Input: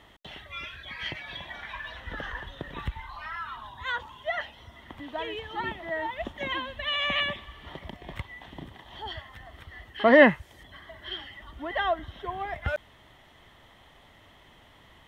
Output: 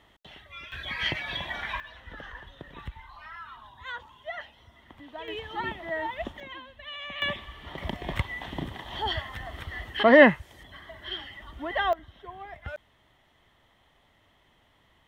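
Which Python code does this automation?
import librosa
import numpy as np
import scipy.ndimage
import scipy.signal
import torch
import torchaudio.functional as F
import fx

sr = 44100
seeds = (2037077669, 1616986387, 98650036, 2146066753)

y = fx.gain(x, sr, db=fx.steps((0.0, -5.0), (0.72, 6.0), (1.8, -6.5), (5.28, 0.0), (6.4, -11.0), (7.22, 1.5), (7.78, 8.0), (10.03, 1.0), (11.93, -8.5)))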